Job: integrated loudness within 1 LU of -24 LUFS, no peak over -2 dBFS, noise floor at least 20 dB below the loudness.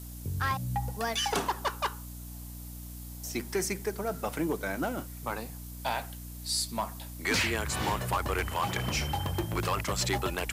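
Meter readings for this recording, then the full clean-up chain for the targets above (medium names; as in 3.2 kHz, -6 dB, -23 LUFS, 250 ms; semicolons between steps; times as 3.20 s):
hum 60 Hz; highest harmonic 300 Hz; hum level -41 dBFS; noise floor -43 dBFS; noise floor target -52 dBFS; loudness -31.5 LUFS; peak level -20.0 dBFS; loudness target -24.0 LUFS
-> de-hum 60 Hz, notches 5; noise reduction 9 dB, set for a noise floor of -43 dBFS; trim +7.5 dB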